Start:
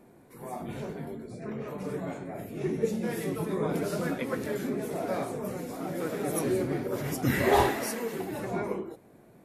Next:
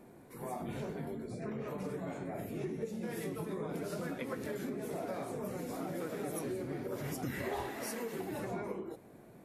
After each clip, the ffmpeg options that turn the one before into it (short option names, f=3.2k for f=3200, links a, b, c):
-af "acompressor=threshold=-36dB:ratio=6"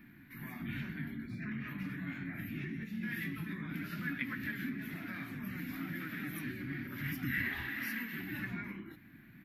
-af "firequalizer=gain_entry='entry(290,0);entry(440,-28);entry(1700,10);entry(6200,-13);entry(8800,-22);entry(13000,4)':delay=0.05:min_phase=1,volume=1.5dB"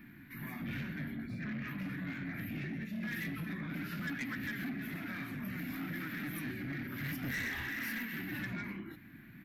-af "asoftclip=type=tanh:threshold=-36.5dB,volume=3dB"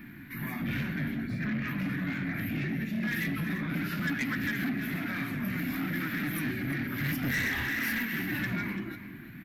-af "aecho=1:1:340:0.237,volume=7.5dB"